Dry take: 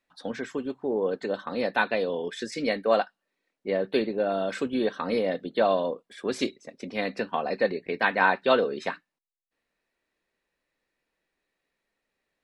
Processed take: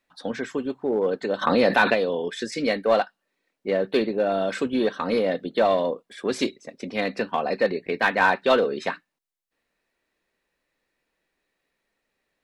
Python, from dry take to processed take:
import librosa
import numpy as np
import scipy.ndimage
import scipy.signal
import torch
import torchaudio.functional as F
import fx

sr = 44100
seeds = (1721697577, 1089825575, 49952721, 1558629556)

p1 = np.clip(x, -10.0 ** (-21.5 / 20.0), 10.0 ** (-21.5 / 20.0))
p2 = x + F.gain(torch.from_numpy(p1), -5.5).numpy()
y = fx.env_flatten(p2, sr, amount_pct=70, at=(1.41, 1.93), fade=0.02)